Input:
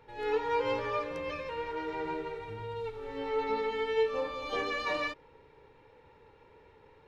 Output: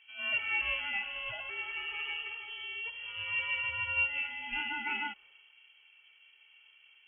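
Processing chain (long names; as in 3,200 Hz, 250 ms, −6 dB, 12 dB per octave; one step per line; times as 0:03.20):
low-pass that shuts in the quiet parts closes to 1,200 Hz, open at −30.5 dBFS
voice inversion scrambler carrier 3,200 Hz
level −2.5 dB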